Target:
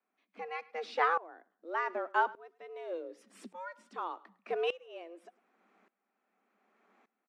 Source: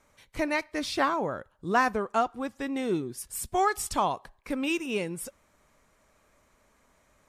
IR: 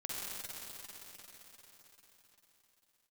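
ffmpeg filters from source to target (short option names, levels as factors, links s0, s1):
-filter_complex "[0:a]highpass=f=49:p=1,acrusher=bits=8:mode=log:mix=0:aa=0.000001,asplit=2[s0][s1];[s1]aecho=0:1:105|210:0.0668|0.0174[s2];[s0][s2]amix=inputs=2:normalize=0,afreqshift=170,lowpass=2600,aeval=exprs='val(0)*pow(10,-21*if(lt(mod(-0.85*n/s,1),2*abs(-0.85)/1000),1-mod(-0.85*n/s,1)/(2*abs(-0.85)/1000),(mod(-0.85*n/s,1)-2*abs(-0.85)/1000)/(1-2*abs(-0.85)/1000))/20)':c=same"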